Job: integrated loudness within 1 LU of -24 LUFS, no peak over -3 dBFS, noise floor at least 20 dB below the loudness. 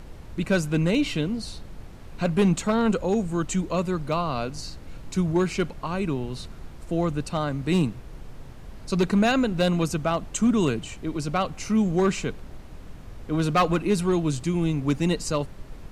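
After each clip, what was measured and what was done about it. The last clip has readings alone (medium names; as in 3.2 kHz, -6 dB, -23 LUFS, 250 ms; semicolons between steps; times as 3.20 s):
clipped samples 0.5%; clipping level -14.0 dBFS; noise floor -42 dBFS; noise floor target -45 dBFS; loudness -25.0 LUFS; peak level -14.0 dBFS; loudness target -24.0 LUFS
-> clip repair -14 dBFS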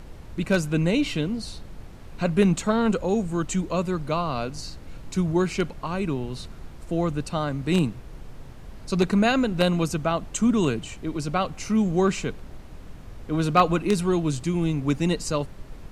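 clipped samples 0.0%; noise floor -42 dBFS; noise floor target -45 dBFS
-> noise print and reduce 6 dB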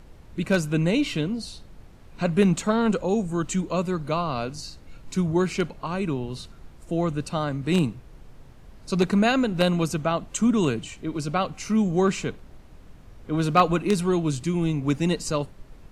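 noise floor -48 dBFS; loudness -25.0 LUFS; peak level -5.0 dBFS; loudness target -24.0 LUFS
-> trim +1 dB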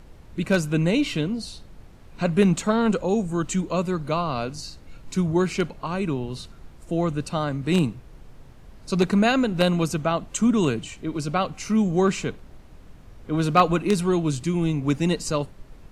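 loudness -24.0 LUFS; peak level -4.0 dBFS; noise floor -47 dBFS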